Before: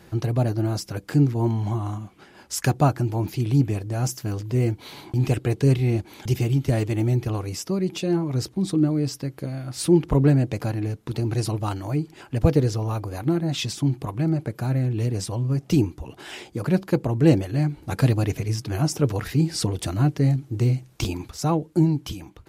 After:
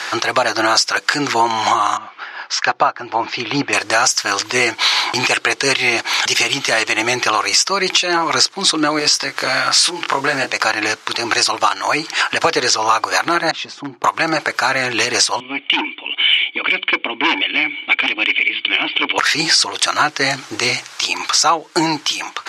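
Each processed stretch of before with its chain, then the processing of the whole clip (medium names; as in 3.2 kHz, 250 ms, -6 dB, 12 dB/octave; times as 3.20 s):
1.97–3.73 s: low-pass 5.3 kHz 24 dB/octave + treble shelf 3.1 kHz -12 dB + upward expansion, over -28 dBFS
8.99–10.52 s: block-companded coder 7-bit + compression 4:1, threshold -25 dBFS + doubling 22 ms -5.5 dB
13.51–14.04 s: band-pass filter 130 Hz, Q 1 + peaking EQ 120 Hz -10.5 dB 0.94 oct + hard clipper -21 dBFS
15.40–19.18 s: cascade formant filter i + tilt EQ +4 dB/octave + overdrive pedal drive 22 dB, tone 1.8 kHz, clips at -17.5 dBFS
whole clip: Chebyshev band-pass 1.2–6 kHz, order 2; compression 5:1, threshold -44 dBFS; loudness maximiser +33.5 dB; trim -1 dB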